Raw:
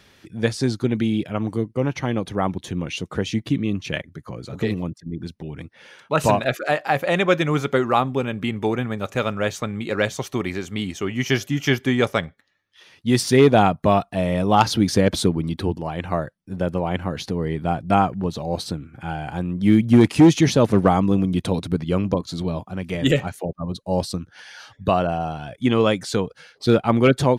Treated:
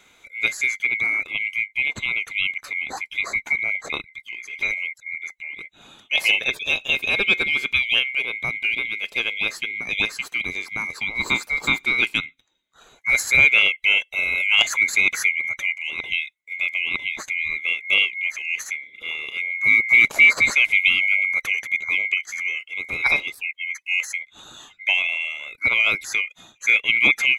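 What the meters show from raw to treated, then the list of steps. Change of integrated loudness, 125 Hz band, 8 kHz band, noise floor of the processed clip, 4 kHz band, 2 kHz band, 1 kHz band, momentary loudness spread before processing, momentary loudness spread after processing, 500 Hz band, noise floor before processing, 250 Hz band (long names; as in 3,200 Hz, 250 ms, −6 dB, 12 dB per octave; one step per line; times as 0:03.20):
+2.0 dB, −22.5 dB, +1.0 dB, −60 dBFS, +6.5 dB, +13.0 dB, −14.0 dB, 13 LU, 13 LU, −18.0 dB, −58 dBFS, −21.5 dB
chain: neighbouring bands swapped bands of 2,000 Hz
level −1.5 dB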